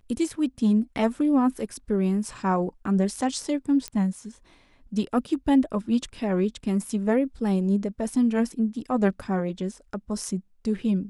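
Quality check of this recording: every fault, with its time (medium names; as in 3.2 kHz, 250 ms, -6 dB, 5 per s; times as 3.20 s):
3.88 s: pop -16 dBFS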